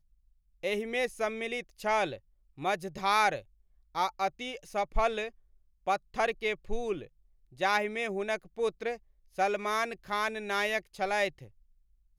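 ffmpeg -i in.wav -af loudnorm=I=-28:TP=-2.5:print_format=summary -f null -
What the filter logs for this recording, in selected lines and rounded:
Input Integrated:    -31.8 LUFS
Input True Peak:     -14.3 dBTP
Input LRA:             1.1 LU
Input Threshold:     -42.2 LUFS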